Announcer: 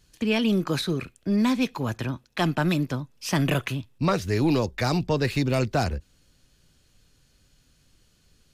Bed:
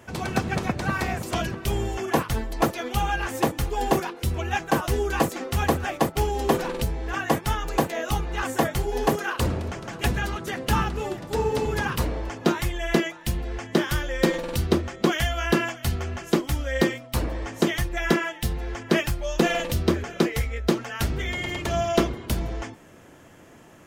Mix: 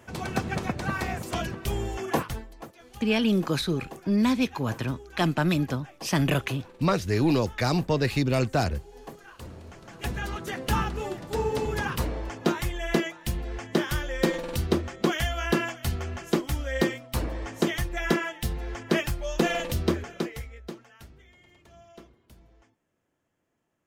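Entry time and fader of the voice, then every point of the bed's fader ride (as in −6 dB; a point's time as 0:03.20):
2.80 s, −0.5 dB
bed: 0:02.24 −3.5 dB
0:02.63 −21 dB
0:09.27 −21 dB
0:10.36 −3 dB
0:19.91 −3 dB
0:21.31 −28 dB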